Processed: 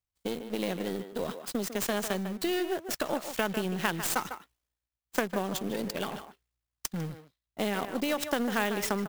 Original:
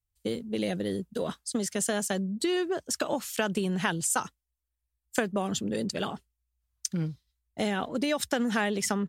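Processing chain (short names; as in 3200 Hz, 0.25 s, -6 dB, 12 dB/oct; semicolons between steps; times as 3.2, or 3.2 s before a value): half-wave gain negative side -7 dB; low shelf 79 Hz -11.5 dB; reverse; upward compressor, threshold -37 dBFS; reverse; in parallel at -9 dB: requantised 6-bit, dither none; on the sum: speakerphone echo 0.15 s, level -9 dB; clock jitter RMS 0.023 ms; gain -2 dB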